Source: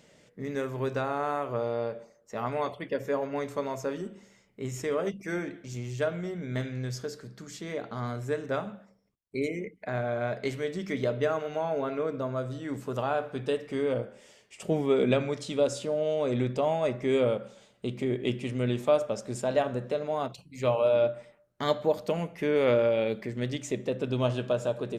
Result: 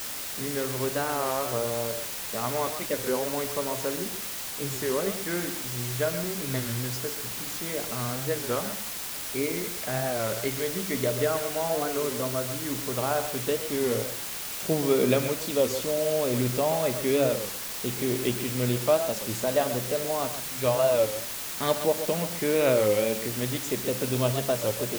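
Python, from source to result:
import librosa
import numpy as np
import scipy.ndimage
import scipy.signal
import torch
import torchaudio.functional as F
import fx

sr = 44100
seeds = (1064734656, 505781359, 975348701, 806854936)

p1 = x + fx.echo_single(x, sr, ms=129, db=-10.0, dry=0)
p2 = fx.quant_dither(p1, sr, seeds[0], bits=6, dither='triangular')
p3 = fx.record_warp(p2, sr, rpm=33.33, depth_cents=160.0)
y = p3 * 10.0 ** (1.0 / 20.0)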